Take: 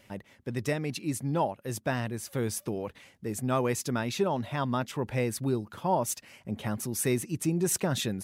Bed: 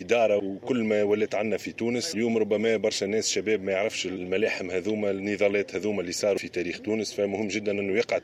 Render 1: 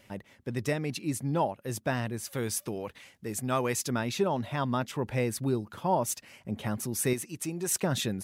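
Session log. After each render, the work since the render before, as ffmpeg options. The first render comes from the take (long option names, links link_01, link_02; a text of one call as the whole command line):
ffmpeg -i in.wav -filter_complex "[0:a]asettb=1/sr,asplit=3[link_01][link_02][link_03];[link_01]atrim=end=2.244[link_04];[link_02]atrim=start=2.24:end=3.9,asetpts=PTS-STARTPTS,afade=type=in:duration=0.004:curve=qsin,afade=type=out:start_time=1.656:duration=0.004:curve=qsin,tiltshelf=frequency=970:gain=-3[link_05];[link_03]atrim=start=3.896[link_06];[link_04][link_05]acrossfade=duration=0.004:curve1=hsin:curve2=qsin[link_07];[link_07][link_06]acrossfade=duration=0.004:curve1=qsin:curve2=hsin,asettb=1/sr,asplit=3[link_08][link_09][link_10];[link_08]atrim=end=7.134[link_11];[link_09]atrim=start=7.13:end=7.83,asetpts=PTS-STARTPTS,afade=type=in:duration=0.004:curve=qsin,afade=type=out:start_time=0.696:duration=0.004:curve=qsin,lowshelf=frequency=410:gain=-10.5[link_12];[link_10]atrim=start=7.826[link_13];[link_11][link_12]acrossfade=duration=0.004:curve1=hsin:curve2=qsin[link_14];[link_14][link_13]acrossfade=duration=0.004:curve1=qsin:curve2=hsin" out.wav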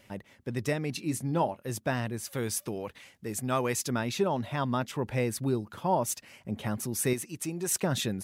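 ffmpeg -i in.wav -filter_complex "[0:a]asettb=1/sr,asplit=3[link_01][link_02][link_03];[link_01]atrim=end=0.924[link_04];[link_02]atrim=start=0.92:end=1.7,asetpts=PTS-STARTPTS,afade=type=in:duration=0.004:curve=qsin,afade=type=out:start_time=0.776:duration=0.004:curve=qsin,asplit=2[link_05][link_06];[link_06]adelay=24,volume=-12dB[link_07];[link_05][link_07]amix=inputs=2:normalize=0,atrim=end_sample=34398[link_08];[link_03]atrim=start=1.696[link_09];[link_04][link_08]acrossfade=duration=0.004:curve1=hsin:curve2=qsin[link_10];[link_10][link_09]acrossfade=duration=0.004:curve1=qsin:curve2=hsin" out.wav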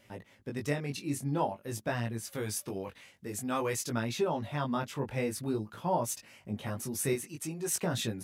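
ffmpeg -i in.wav -af "flanger=delay=17.5:depth=4:speed=0.5" out.wav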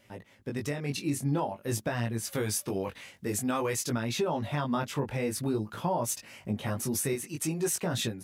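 ffmpeg -i in.wav -af "alimiter=level_in=4dB:limit=-24dB:level=0:latency=1:release=296,volume=-4dB,dynaudnorm=framelen=350:gausssize=3:maxgain=7.5dB" out.wav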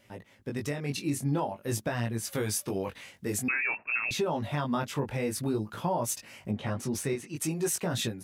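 ffmpeg -i in.wav -filter_complex "[0:a]asettb=1/sr,asplit=3[link_01][link_02][link_03];[link_01]atrim=end=3.484[link_04];[link_02]atrim=start=3.48:end=4.11,asetpts=PTS-STARTPTS,afade=type=in:duration=0.004:curve=qsin,afade=type=out:start_time=0.626:duration=0.004:curve=qsin,lowpass=frequency=2400:width_type=q:width=0.5098,lowpass=frequency=2400:width_type=q:width=0.6013,lowpass=frequency=2400:width_type=q:width=0.9,lowpass=frequency=2400:width_type=q:width=2.563,afreqshift=-2800[link_05];[link_03]atrim=start=4.106[link_06];[link_04][link_05]acrossfade=duration=0.004:curve1=hsin:curve2=qsin[link_07];[link_07][link_06]acrossfade=duration=0.004:curve1=qsin:curve2=hsin,asettb=1/sr,asplit=3[link_08][link_09][link_10];[link_08]atrim=end=6.514[link_11];[link_09]atrim=start=6.51:end=7.36,asetpts=PTS-STARTPTS,afade=type=in:duration=0.004:curve=qsin,afade=type=out:start_time=0.846:duration=0.004:curve=qsin,adynamicsmooth=sensitivity=5:basefreq=5600[link_12];[link_10]atrim=start=7.356[link_13];[link_11][link_12]acrossfade=duration=0.004:curve1=hsin:curve2=qsin[link_14];[link_14][link_13]acrossfade=duration=0.004:curve1=qsin:curve2=hsin" out.wav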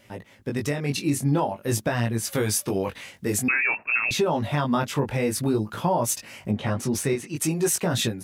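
ffmpeg -i in.wav -af "volume=6.5dB" out.wav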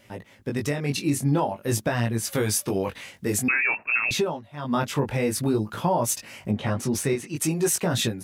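ffmpeg -i in.wav -filter_complex "[0:a]asplit=3[link_01][link_02][link_03];[link_01]atrim=end=4.43,asetpts=PTS-STARTPTS,afade=type=out:start_time=4.18:duration=0.25:silence=0.0841395[link_04];[link_02]atrim=start=4.43:end=4.53,asetpts=PTS-STARTPTS,volume=-21.5dB[link_05];[link_03]atrim=start=4.53,asetpts=PTS-STARTPTS,afade=type=in:duration=0.25:silence=0.0841395[link_06];[link_04][link_05][link_06]concat=n=3:v=0:a=1" out.wav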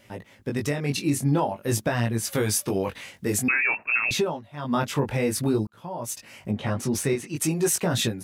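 ffmpeg -i in.wav -filter_complex "[0:a]asplit=2[link_01][link_02];[link_01]atrim=end=5.67,asetpts=PTS-STARTPTS,afade=type=out:start_time=5.666:duration=0.004:curve=hsin[link_03];[link_02]atrim=start=5.67,asetpts=PTS-STARTPTS,afade=type=in:duration=1.46:curve=qsin[link_04];[link_03][link_04]concat=n=2:v=0:a=1" out.wav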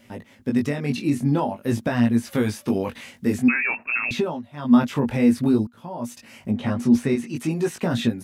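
ffmpeg -i in.wav -filter_complex "[0:a]acrossover=split=3600[link_01][link_02];[link_02]acompressor=threshold=-41dB:ratio=4:attack=1:release=60[link_03];[link_01][link_03]amix=inputs=2:normalize=0,equalizer=frequency=240:width=6.5:gain=14" out.wav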